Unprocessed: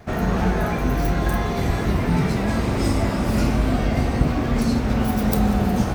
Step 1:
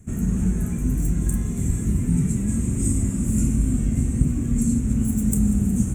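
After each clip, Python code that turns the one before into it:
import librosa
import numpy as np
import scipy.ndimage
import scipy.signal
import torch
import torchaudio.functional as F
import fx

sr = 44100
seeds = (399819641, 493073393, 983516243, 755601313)

y = fx.curve_eq(x, sr, hz=(240.0, 720.0, 1100.0, 2600.0, 4900.0, 7400.0, 16000.0), db=(0, -26, -21, -15, -24, 14, -8))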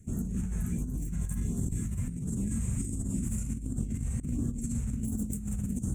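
y = fx.filter_lfo_notch(x, sr, shape='sine', hz=1.4, low_hz=280.0, high_hz=2400.0, q=0.77)
y = fx.over_compress(y, sr, threshold_db=-23.0, ratio=-0.5)
y = y * librosa.db_to_amplitude(-8.0)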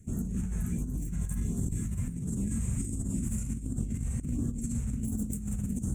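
y = x + 10.0 ** (-18.5 / 20.0) * np.pad(x, (int(782 * sr / 1000.0), 0))[:len(x)]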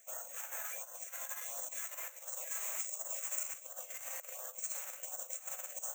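y = fx.brickwall_highpass(x, sr, low_hz=500.0)
y = (np.kron(scipy.signal.resample_poly(y, 1, 3), np.eye(3)[0]) * 3)[:len(y)]
y = y * librosa.db_to_amplitude(8.0)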